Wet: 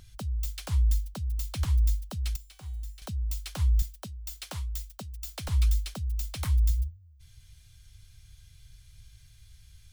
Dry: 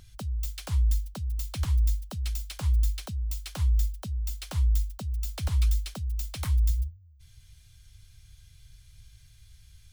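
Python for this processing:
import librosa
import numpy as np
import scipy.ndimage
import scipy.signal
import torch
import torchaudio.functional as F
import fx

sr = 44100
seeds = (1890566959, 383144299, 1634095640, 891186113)

y = fx.comb_fb(x, sr, f0_hz=380.0, decay_s=0.69, harmonics='all', damping=0.0, mix_pct=80, at=(2.36, 3.02))
y = fx.highpass(y, sr, hz=200.0, slope=6, at=(3.82, 5.48))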